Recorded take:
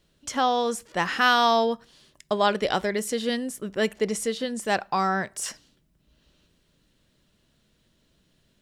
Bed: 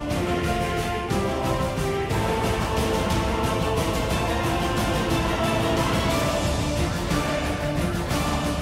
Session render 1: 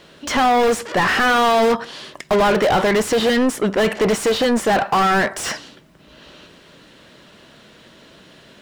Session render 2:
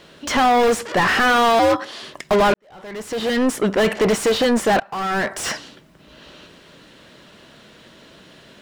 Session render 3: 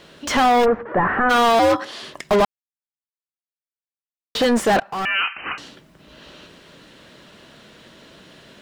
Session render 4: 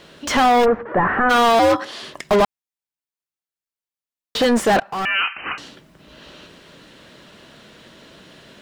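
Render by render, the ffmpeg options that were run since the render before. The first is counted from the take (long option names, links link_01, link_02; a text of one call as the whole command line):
ffmpeg -i in.wav -filter_complex "[0:a]asplit=2[link_01][link_02];[link_02]aeval=exprs='(mod(11.2*val(0)+1,2)-1)/11.2':channel_layout=same,volume=-10dB[link_03];[link_01][link_03]amix=inputs=2:normalize=0,asplit=2[link_04][link_05];[link_05]highpass=frequency=720:poles=1,volume=33dB,asoftclip=type=tanh:threshold=-7.5dB[link_06];[link_04][link_06]amix=inputs=2:normalize=0,lowpass=frequency=1500:poles=1,volume=-6dB" out.wav
ffmpeg -i in.wav -filter_complex "[0:a]asettb=1/sr,asplit=3[link_01][link_02][link_03];[link_01]atrim=end=1.594[link_04];[link_02]atrim=start=1.59:end=2.03,asetpts=PTS-STARTPTS,afade=type=in:duration=0.004:curve=qsin,afade=type=out:start_time=0.436:duration=0.004:curve=qsin,afreqshift=81[link_05];[link_03]atrim=start=2.026[link_06];[link_04][link_05]acrossfade=duration=0.004:curve1=hsin:curve2=qsin[link_07];[link_07][link_06]acrossfade=duration=0.004:curve1=qsin:curve2=hsin,asplit=3[link_08][link_09][link_10];[link_08]atrim=end=2.54,asetpts=PTS-STARTPTS,afade=type=out:start_time=2.536:duration=0.004:curve=hsin[link_11];[link_09]atrim=start=2.54:end=4.8,asetpts=PTS-STARTPTS,afade=type=in:duration=0.96:curve=qua,afade=type=out:start_time=2.256:duration=0.004:curve=hsin:silence=0.0794328[link_12];[link_10]atrim=start=4.8,asetpts=PTS-STARTPTS,afade=type=in:duration=0.66:silence=0.0794328[link_13];[link_11][link_12][link_13]concat=n=3:v=0:a=1" out.wav
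ffmpeg -i in.wav -filter_complex "[0:a]asplit=3[link_01][link_02][link_03];[link_01]afade=type=out:start_time=0.64:duration=0.02[link_04];[link_02]lowpass=frequency=1600:width=0.5412,lowpass=frequency=1600:width=1.3066,afade=type=in:start_time=0.64:duration=0.02,afade=type=out:start_time=1.29:duration=0.02[link_05];[link_03]afade=type=in:start_time=1.29:duration=0.02[link_06];[link_04][link_05][link_06]amix=inputs=3:normalize=0,asettb=1/sr,asplit=3[link_07][link_08][link_09];[link_07]atrim=end=5.054[link_10];[link_08]atrim=start=5.05:end=5.58,asetpts=PTS-STARTPTS,afade=type=in:duration=0.004:curve=qsin,afade=type=out:start_time=0.526:duration=0.004:curve=qsin,lowpass=frequency=2600:width_type=q:width=0.5098,lowpass=frequency=2600:width_type=q:width=0.6013,lowpass=frequency=2600:width_type=q:width=0.9,lowpass=frequency=2600:width_type=q:width=2.563,afreqshift=-3100[link_11];[link_09]atrim=start=5.576[link_12];[link_10][link_11]acrossfade=duration=0.004:curve1=hsin:curve2=qsin[link_13];[link_13][link_12]acrossfade=duration=0.004:curve1=qsin:curve2=hsin,asplit=3[link_14][link_15][link_16];[link_14]atrim=end=2.45,asetpts=PTS-STARTPTS,afade=type=out:start_time=2.446:duration=0.004:curve=hsin[link_17];[link_15]atrim=start=2.45:end=4.35,asetpts=PTS-STARTPTS,volume=0[link_18];[link_16]atrim=start=4.35,asetpts=PTS-STARTPTS,afade=type=in:duration=0.004:curve=hsin[link_19];[link_17][link_18][link_19]concat=n=3:v=0:a=1" out.wav
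ffmpeg -i in.wav -af "volume=1dB" out.wav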